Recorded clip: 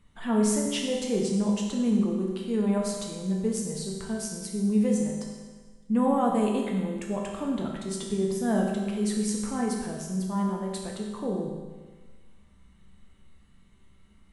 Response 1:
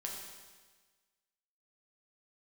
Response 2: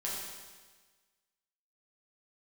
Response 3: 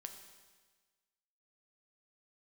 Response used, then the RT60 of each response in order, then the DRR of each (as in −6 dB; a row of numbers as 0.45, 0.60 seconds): 1; 1.4, 1.4, 1.4 seconds; −1.5, −6.0, 5.0 decibels